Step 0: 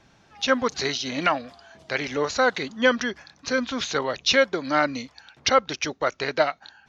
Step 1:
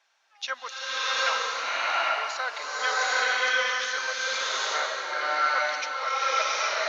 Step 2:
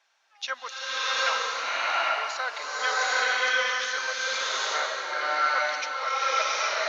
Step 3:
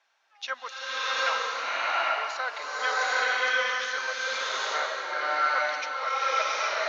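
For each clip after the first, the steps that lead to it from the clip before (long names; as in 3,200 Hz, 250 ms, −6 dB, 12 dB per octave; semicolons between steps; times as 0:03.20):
Bessel high-pass filter 1,000 Hz, order 4; gate pattern "xxxxxxxxx...x" 173 BPM; slow-attack reverb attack 810 ms, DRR −11 dB; level −7 dB
no processing that can be heard
high-shelf EQ 4,700 Hz −8 dB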